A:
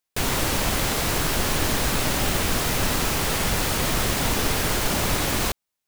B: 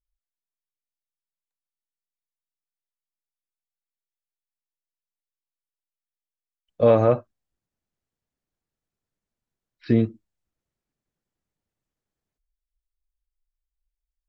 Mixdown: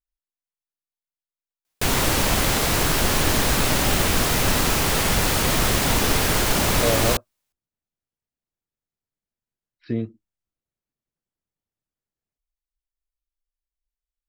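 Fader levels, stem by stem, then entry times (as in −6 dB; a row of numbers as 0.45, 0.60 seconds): +3.0, −6.5 decibels; 1.65, 0.00 seconds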